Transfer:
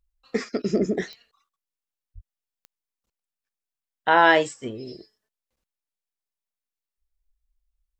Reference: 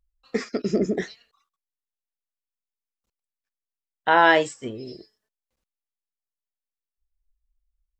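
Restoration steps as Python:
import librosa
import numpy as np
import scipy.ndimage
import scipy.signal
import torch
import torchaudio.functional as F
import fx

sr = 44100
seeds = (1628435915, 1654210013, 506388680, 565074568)

y = fx.fix_declick_ar(x, sr, threshold=10.0)
y = fx.highpass(y, sr, hz=140.0, slope=24, at=(2.14, 2.26), fade=0.02)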